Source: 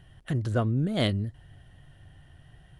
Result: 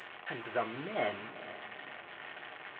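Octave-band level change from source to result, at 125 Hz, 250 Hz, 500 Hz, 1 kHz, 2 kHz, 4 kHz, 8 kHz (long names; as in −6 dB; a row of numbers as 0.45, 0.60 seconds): −25.5 dB, −15.0 dB, −4.0 dB, +1.5 dB, +2.0 dB, −9.0 dB, below −20 dB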